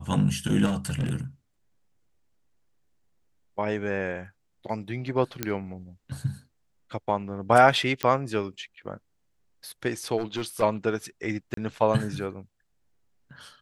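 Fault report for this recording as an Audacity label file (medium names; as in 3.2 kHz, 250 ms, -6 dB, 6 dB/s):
0.650000	1.120000	clipped -23 dBFS
5.430000	5.430000	pop -10 dBFS
8.030000	8.030000	pop -10 dBFS
10.180000	10.630000	clipped -24 dBFS
11.540000	11.570000	dropout 33 ms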